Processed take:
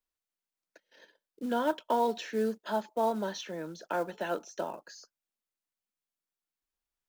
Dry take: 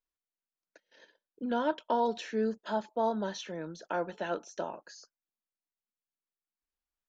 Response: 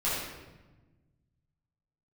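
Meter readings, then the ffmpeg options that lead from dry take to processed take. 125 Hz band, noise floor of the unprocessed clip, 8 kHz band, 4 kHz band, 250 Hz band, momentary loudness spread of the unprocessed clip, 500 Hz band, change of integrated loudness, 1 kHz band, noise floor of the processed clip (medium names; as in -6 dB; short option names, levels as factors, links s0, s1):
-1.0 dB, under -85 dBFS, no reading, +1.0 dB, 0.0 dB, 11 LU, +1.0 dB, +1.0 dB, +1.0 dB, under -85 dBFS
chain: -filter_complex "[0:a]acrossover=split=160|850|1600[s0][s1][s2][s3];[s0]acompressor=threshold=0.00126:ratio=6[s4];[s4][s1][s2][s3]amix=inputs=4:normalize=0,acrusher=bits=6:mode=log:mix=0:aa=0.000001,volume=1.12"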